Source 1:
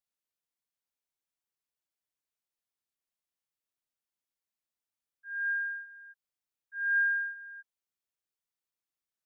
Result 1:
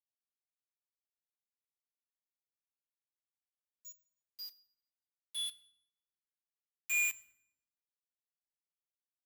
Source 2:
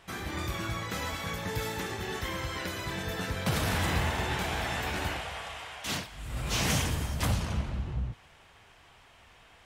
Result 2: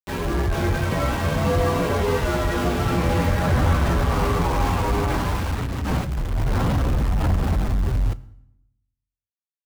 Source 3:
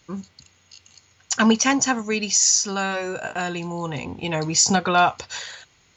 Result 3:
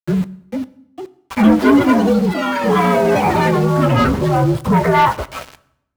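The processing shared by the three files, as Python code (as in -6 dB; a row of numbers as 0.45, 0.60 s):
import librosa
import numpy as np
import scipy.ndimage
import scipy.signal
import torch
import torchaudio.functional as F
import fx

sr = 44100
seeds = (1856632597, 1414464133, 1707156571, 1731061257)

p1 = fx.partial_stretch(x, sr, pct=122)
p2 = scipy.signal.sosfilt(scipy.signal.butter(2, 1100.0, 'lowpass', fs=sr, output='sos'), p1)
p3 = fx.over_compress(p2, sr, threshold_db=-36.0, ratio=-1.0)
p4 = p2 + F.gain(torch.from_numpy(p3), -1.0).numpy()
p5 = fx.leveller(p4, sr, passes=2)
p6 = np.where(np.abs(p5) >= 10.0 ** (-32.5 / 20.0), p5, 0.0)
p7 = fx.echo_pitch(p6, sr, ms=470, semitones=6, count=3, db_per_echo=-6.0)
p8 = fx.rev_fdn(p7, sr, rt60_s=0.77, lf_ratio=1.35, hf_ratio=0.85, size_ms=70.0, drr_db=15.0)
y = F.gain(torch.from_numpy(p8), 4.5).numpy()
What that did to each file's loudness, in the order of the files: -5.0, +10.0, +6.0 LU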